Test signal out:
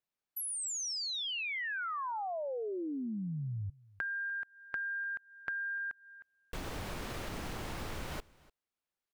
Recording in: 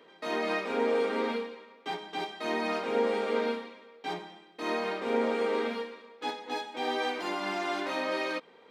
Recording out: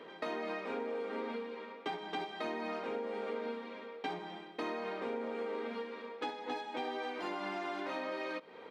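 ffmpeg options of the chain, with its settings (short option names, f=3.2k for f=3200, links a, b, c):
-filter_complex "[0:a]highshelf=f=4.5k:g=-11,acompressor=threshold=-42dB:ratio=16,asplit=2[a][b];[b]aecho=0:1:296:0.0708[c];[a][c]amix=inputs=2:normalize=0,volume=6.5dB"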